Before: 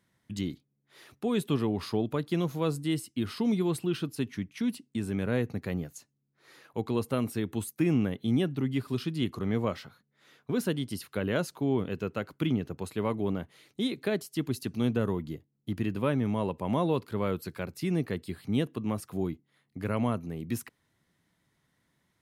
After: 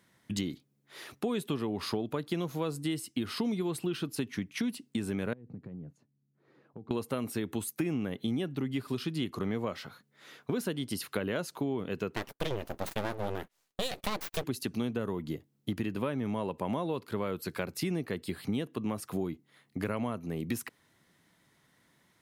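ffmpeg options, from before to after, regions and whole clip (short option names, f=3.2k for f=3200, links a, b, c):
-filter_complex "[0:a]asettb=1/sr,asplit=3[a][b][c];[a]atrim=end=5.334[d];[b]atrim=start=5.33:end=6.91,asetpts=PTS-STARTPTS,afade=t=in:d=0.004:c=qsin,afade=t=out:st=1.576:d=0.004:c=qsin,acompressor=threshold=-40dB:ratio=16:attack=3.2:release=140:knee=1:detection=peak,bandpass=f=150:t=q:w=1[e];[c]atrim=start=6.906[f];[d][e]acrossfade=d=0.004:c1=hsin:c2=qsin[g];[g][f]acrossfade=d=0.004:c1=qsin:c2=hsin,asettb=1/sr,asplit=3[h][i][j];[h]atrim=end=12.164[k];[i]atrim=start=12.16:end=14.44,asetpts=PTS-STARTPTS,afade=t=in:d=0.004:c=qsin,afade=t=out:st=2.276:d=0.004:c=qsin,agate=range=-23dB:threshold=-50dB:ratio=16:release=100:detection=peak,highshelf=f=7.5k:g=8.5,aeval=exprs='abs(val(0))':c=same[l];[j]atrim=start=14.436[m];[k][l]acrossfade=d=0.004:c1=hsin:c2=qsin[n];[n][m]acrossfade=d=0.004:c1=qsin:c2=hsin,lowshelf=f=120:g=-10,acompressor=threshold=-37dB:ratio=6,volume=7.5dB"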